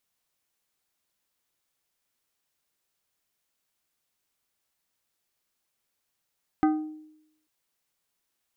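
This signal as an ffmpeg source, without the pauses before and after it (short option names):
-f lavfi -i "aevalsrc='0.141*pow(10,-3*t/0.81)*sin(2*PI*309*t)+0.0708*pow(10,-3*t/0.427)*sin(2*PI*772.5*t)+0.0355*pow(10,-3*t/0.307)*sin(2*PI*1236*t)+0.0178*pow(10,-3*t/0.263)*sin(2*PI*1545*t)+0.00891*pow(10,-3*t/0.218)*sin(2*PI*2008.5*t)':d=0.84:s=44100"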